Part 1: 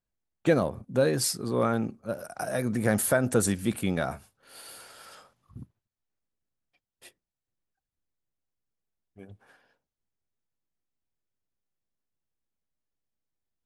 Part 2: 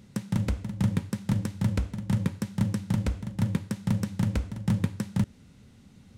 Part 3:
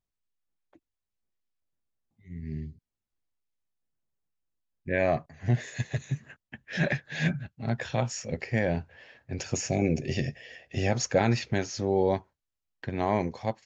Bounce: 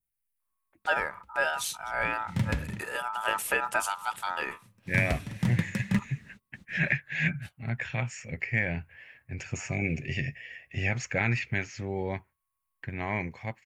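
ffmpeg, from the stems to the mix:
ffmpeg -i stem1.wav -i stem2.wav -i stem3.wav -filter_complex "[0:a]aeval=exprs='val(0)*sin(2*PI*1100*n/s)':channel_layout=same,adelay=400,volume=-4dB[link_01];[1:a]flanger=delay=4.4:depth=3.9:regen=54:speed=0.37:shape=triangular,adelay=750,volume=2dB[link_02];[2:a]firequalizer=gain_entry='entry(140,0);entry(210,-5);entry(510,-9);entry(2200,4);entry(3600,-11);entry(6200,-10);entry(9400,12)':delay=0.05:min_phase=1,volume=-1.5dB,asplit=2[link_03][link_04];[link_04]apad=whole_len=305260[link_05];[link_02][link_05]sidechaingate=range=-33dB:threshold=-52dB:ratio=16:detection=peak[link_06];[link_01][link_06][link_03]amix=inputs=3:normalize=0,adynamicequalizer=threshold=0.00447:dfrequency=2500:dqfactor=0.98:tfrequency=2500:tqfactor=0.98:attack=5:release=100:ratio=0.375:range=3.5:mode=boostabove:tftype=bell" out.wav

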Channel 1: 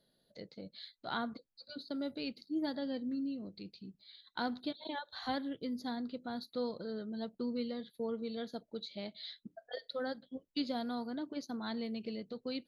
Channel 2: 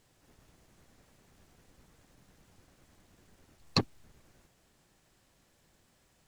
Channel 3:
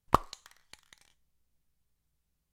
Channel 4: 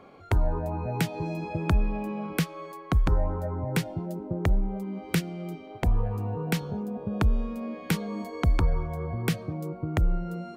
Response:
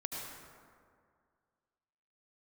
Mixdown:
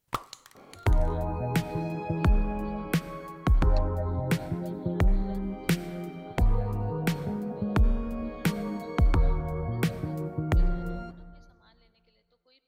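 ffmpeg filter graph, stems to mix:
-filter_complex "[0:a]highpass=760,volume=-18.5dB,asplit=2[link_01][link_02];[link_02]volume=-12.5dB[link_03];[1:a]volume=-17.5dB[link_04];[2:a]highpass=85,highshelf=frequency=11000:gain=8,asoftclip=type=tanh:threshold=-20.5dB,volume=1dB,asplit=2[link_05][link_06];[link_06]volume=-23.5dB[link_07];[3:a]adynamicequalizer=threshold=0.00355:dfrequency=2300:dqfactor=0.7:tfrequency=2300:tqfactor=0.7:attack=5:release=100:ratio=0.375:range=2:mode=cutabove:tftype=highshelf,adelay=550,volume=-1dB,asplit=2[link_08][link_09];[link_09]volume=-13dB[link_10];[4:a]atrim=start_sample=2205[link_11];[link_03][link_07][link_10]amix=inputs=3:normalize=0[link_12];[link_12][link_11]afir=irnorm=-1:irlink=0[link_13];[link_01][link_04][link_05][link_08][link_13]amix=inputs=5:normalize=0"

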